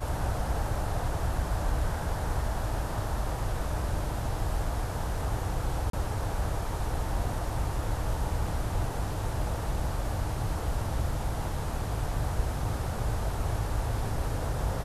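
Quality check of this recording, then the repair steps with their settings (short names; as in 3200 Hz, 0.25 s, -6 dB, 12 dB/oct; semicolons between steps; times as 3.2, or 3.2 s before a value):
5.9–5.93 gap 33 ms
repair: interpolate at 5.9, 33 ms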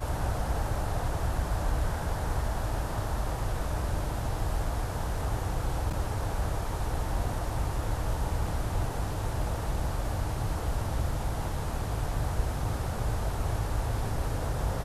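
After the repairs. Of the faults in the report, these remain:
none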